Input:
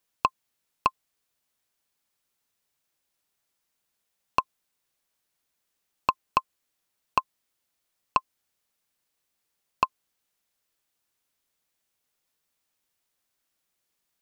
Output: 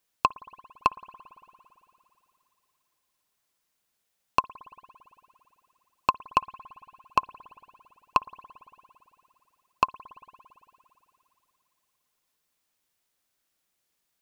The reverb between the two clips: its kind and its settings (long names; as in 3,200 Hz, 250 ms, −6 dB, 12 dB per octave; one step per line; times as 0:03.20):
spring reverb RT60 3 s, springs 56 ms, chirp 30 ms, DRR 18 dB
level +1 dB